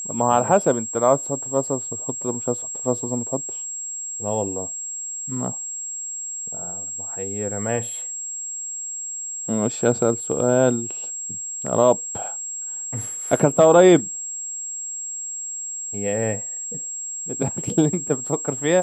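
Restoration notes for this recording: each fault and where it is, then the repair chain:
whistle 7,600 Hz −28 dBFS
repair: notch filter 7,600 Hz, Q 30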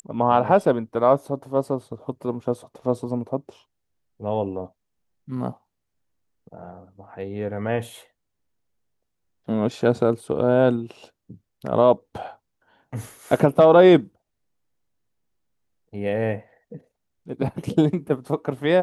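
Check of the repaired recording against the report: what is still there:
none of them is left

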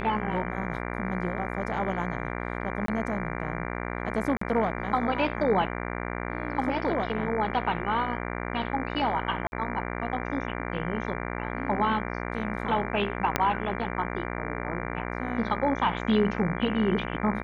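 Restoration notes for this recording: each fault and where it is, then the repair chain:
mains buzz 60 Hz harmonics 39 −33 dBFS
0:02.86–0:02.88: drop-out 23 ms
0:04.37–0:04.41: drop-out 44 ms
0:09.47–0:09.52: drop-out 51 ms
0:13.36: click −7 dBFS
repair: click removal
hum removal 60 Hz, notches 39
repair the gap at 0:02.86, 23 ms
repair the gap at 0:04.37, 44 ms
repair the gap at 0:09.47, 51 ms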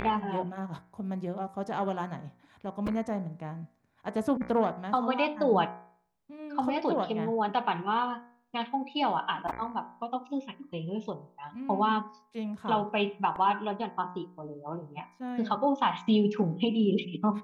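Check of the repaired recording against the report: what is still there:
0:13.36: click

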